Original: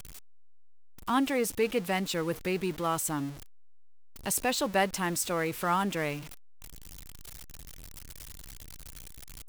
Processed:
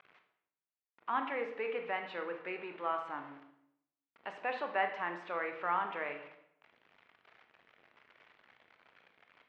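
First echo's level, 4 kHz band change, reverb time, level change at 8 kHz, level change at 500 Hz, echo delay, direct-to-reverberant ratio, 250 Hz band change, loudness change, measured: no echo, -14.5 dB, 0.75 s, under -40 dB, -7.5 dB, no echo, 5.0 dB, -16.0 dB, -7.5 dB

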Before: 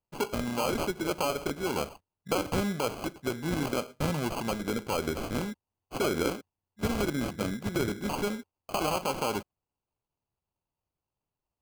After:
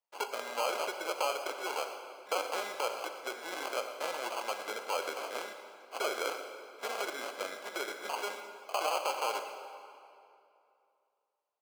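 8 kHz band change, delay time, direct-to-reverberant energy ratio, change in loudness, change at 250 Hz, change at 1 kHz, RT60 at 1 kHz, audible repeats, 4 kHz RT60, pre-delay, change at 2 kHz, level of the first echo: -3.0 dB, 117 ms, 6.5 dB, -4.5 dB, -19.5 dB, -1.0 dB, 2.6 s, 1, 1.9 s, 34 ms, -1.0 dB, -15.5 dB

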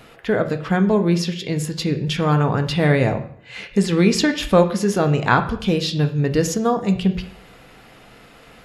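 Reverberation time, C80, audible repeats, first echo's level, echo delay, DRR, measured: 0.60 s, 15.5 dB, no echo, no echo, no echo, 6.0 dB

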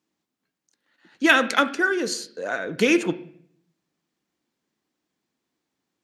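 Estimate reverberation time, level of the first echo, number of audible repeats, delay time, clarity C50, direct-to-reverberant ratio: 0.60 s, no echo, no echo, no echo, 14.5 dB, 10.0 dB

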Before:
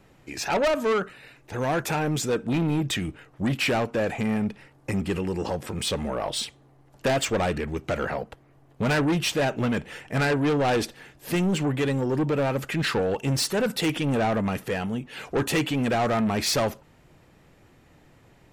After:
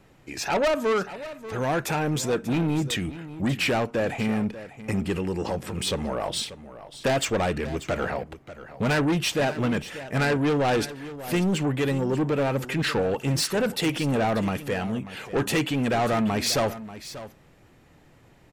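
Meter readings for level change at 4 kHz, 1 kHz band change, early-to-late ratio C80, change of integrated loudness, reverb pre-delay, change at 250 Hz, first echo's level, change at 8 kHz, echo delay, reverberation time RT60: 0.0 dB, 0.0 dB, no reverb, 0.0 dB, no reverb, 0.0 dB, -14.5 dB, 0.0 dB, 588 ms, no reverb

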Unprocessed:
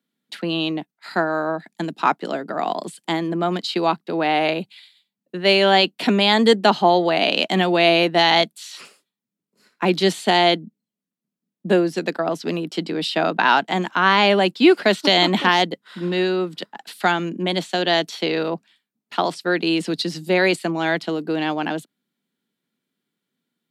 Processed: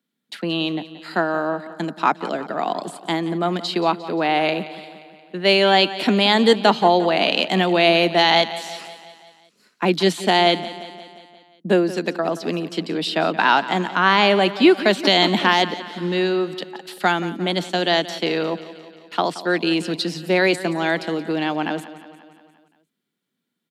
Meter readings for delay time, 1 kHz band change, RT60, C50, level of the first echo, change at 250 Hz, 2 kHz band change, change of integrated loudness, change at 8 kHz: 176 ms, 0.0 dB, no reverb, no reverb, -15.5 dB, 0.0 dB, 0.0 dB, 0.0 dB, 0.0 dB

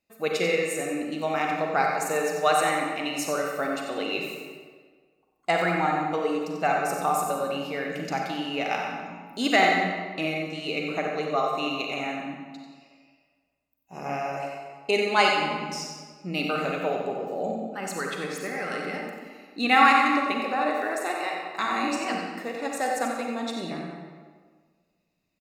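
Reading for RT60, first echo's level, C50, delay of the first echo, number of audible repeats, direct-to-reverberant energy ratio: 1.6 s, -7.5 dB, 0.5 dB, 91 ms, 1, -0.5 dB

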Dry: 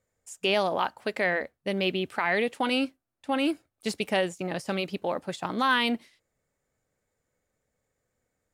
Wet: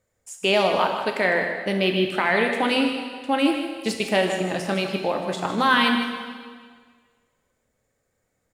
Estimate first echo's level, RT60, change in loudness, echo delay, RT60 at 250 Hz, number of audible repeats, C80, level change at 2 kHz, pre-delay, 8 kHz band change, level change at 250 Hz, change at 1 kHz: -9.0 dB, 1.7 s, +6.0 dB, 155 ms, 1.7 s, 1, 5.0 dB, +6.0 dB, 5 ms, +6.0 dB, +6.0 dB, +6.0 dB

